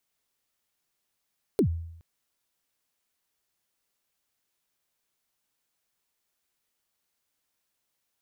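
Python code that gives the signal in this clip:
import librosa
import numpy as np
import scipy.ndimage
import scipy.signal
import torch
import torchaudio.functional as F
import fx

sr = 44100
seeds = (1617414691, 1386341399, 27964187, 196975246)

y = fx.drum_kick(sr, seeds[0], length_s=0.42, level_db=-16.5, start_hz=470.0, end_hz=83.0, sweep_ms=88.0, decay_s=0.77, click=True)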